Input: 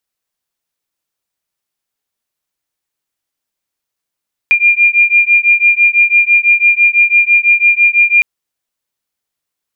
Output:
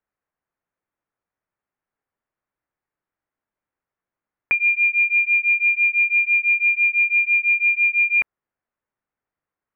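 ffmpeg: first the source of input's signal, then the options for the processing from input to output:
-f lavfi -i "aevalsrc='0.335*(sin(2*PI*2400*t)+sin(2*PI*2406*t))':d=3.71:s=44100"
-af "lowpass=f=1.9k:w=0.5412,lowpass=f=1.9k:w=1.3066"

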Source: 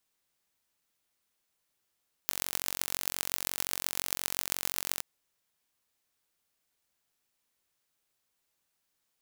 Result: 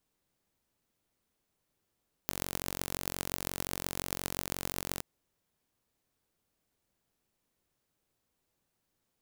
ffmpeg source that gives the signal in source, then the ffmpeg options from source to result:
-f lavfi -i "aevalsrc='0.891*eq(mod(n,965),0)*(0.5+0.5*eq(mod(n,5790),0))':d=2.72:s=44100"
-filter_complex "[0:a]tiltshelf=f=720:g=7,asplit=2[a][b];[b]asoftclip=type=hard:threshold=-16.5dB,volume=-6.5dB[c];[a][c]amix=inputs=2:normalize=0"

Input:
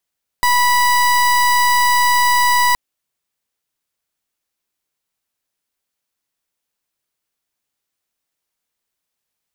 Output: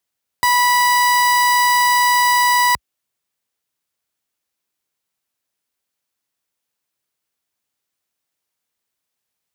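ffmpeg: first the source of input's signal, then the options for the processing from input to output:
-f lavfi -i "aevalsrc='0.211*(2*lt(mod(981*t,1),0.3)-1)':d=2.32:s=44100"
-af "highpass=f=57:w=0.5412,highpass=f=57:w=1.3066"

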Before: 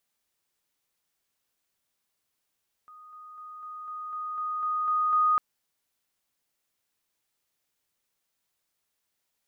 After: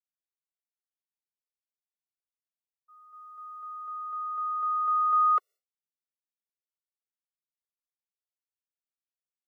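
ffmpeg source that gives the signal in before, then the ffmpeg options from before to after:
-f lavfi -i "aevalsrc='pow(10,(-46.5+3*floor(t/0.25))/20)*sin(2*PI*1240*t)':d=2.5:s=44100"
-af "agate=range=-33dB:threshold=-45dB:ratio=3:detection=peak,lowshelf=f=300:t=q:w=3:g=-11.5,afftfilt=real='re*eq(mod(floor(b*sr/1024/370),2),1)':imag='im*eq(mod(floor(b*sr/1024/370),2),1)':win_size=1024:overlap=0.75"

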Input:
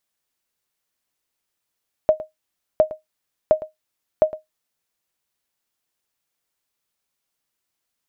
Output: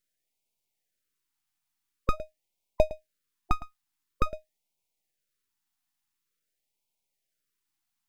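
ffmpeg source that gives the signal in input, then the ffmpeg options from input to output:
-f lavfi -i "aevalsrc='0.531*(sin(2*PI*623*mod(t,0.71))*exp(-6.91*mod(t,0.71)/0.15)+0.15*sin(2*PI*623*max(mod(t,0.71)-0.11,0))*exp(-6.91*max(mod(t,0.71)-0.11,0)/0.15))':d=2.84:s=44100"
-af "aeval=exprs='max(val(0),0)':c=same,afftfilt=real='re*(1-between(b*sr/1024,460*pow(1500/460,0.5+0.5*sin(2*PI*0.47*pts/sr))/1.41,460*pow(1500/460,0.5+0.5*sin(2*PI*0.47*pts/sr))*1.41))':imag='im*(1-between(b*sr/1024,460*pow(1500/460,0.5+0.5*sin(2*PI*0.47*pts/sr))/1.41,460*pow(1500/460,0.5+0.5*sin(2*PI*0.47*pts/sr))*1.41))':win_size=1024:overlap=0.75"

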